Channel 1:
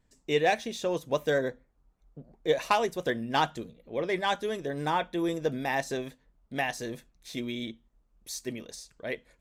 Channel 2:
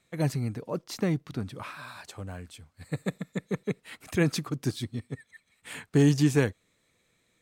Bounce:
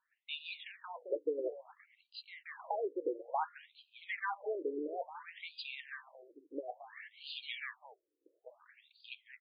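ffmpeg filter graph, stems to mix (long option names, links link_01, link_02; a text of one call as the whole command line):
ffmpeg -i stem1.wav -i stem2.wav -filter_complex "[0:a]acompressor=threshold=-29dB:ratio=5,volume=-0.5dB,asplit=2[link_01][link_02];[link_02]volume=-15dB[link_03];[1:a]highpass=85,aecho=1:1:1:0.9,aeval=exprs='clip(val(0),-1,0.0794)':channel_layout=same,adelay=1250,volume=-9.5dB,asplit=2[link_04][link_05];[link_05]volume=-7.5dB[link_06];[link_03][link_06]amix=inputs=2:normalize=0,aecho=0:1:217:1[link_07];[link_01][link_04][link_07]amix=inputs=3:normalize=0,afftfilt=real='re*between(b*sr/1024,370*pow(3500/370,0.5+0.5*sin(2*PI*0.58*pts/sr))/1.41,370*pow(3500/370,0.5+0.5*sin(2*PI*0.58*pts/sr))*1.41)':imag='im*between(b*sr/1024,370*pow(3500/370,0.5+0.5*sin(2*PI*0.58*pts/sr))/1.41,370*pow(3500/370,0.5+0.5*sin(2*PI*0.58*pts/sr))*1.41)':win_size=1024:overlap=0.75" out.wav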